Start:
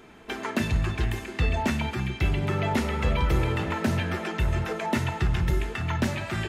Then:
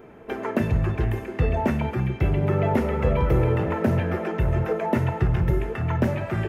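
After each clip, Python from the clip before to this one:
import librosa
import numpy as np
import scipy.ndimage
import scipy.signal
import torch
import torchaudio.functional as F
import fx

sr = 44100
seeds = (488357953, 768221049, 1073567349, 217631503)

y = fx.graphic_eq(x, sr, hz=(125, 500, 4000, 8000), db=(6, 9, -11, -10))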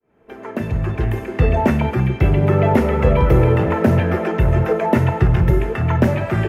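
y = fx.fade_in_head(x, sr, length_s=1.46)
y = y * librosa.db_to_amplitude(7.0)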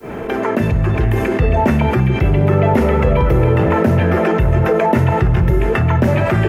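y = fx.env_flatten(x, sr, amount_pct=70)
y = y * librosa.db_to_amplitude(-1.5)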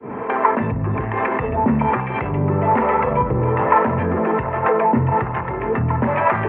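y = 10.0 ** (-8.5 / 20.0) * np.tanh(x / 10.0 ** (-8.5 / 20.0))
y = fx.harmonic_tremolo(y, sr, hz=1.2, depth_pct=70, crossover_hz=450.0)
y = fx.cabinet(y, sr, low_hz=160.0, low_slope=12, high_hz=2100.0, hz=(170.0, 350.0, 620.0, 1000.0, 1500.0), db=(-7, -9, -5, 9, -4))
y = y * librosa.db_to_amplitude(5.0)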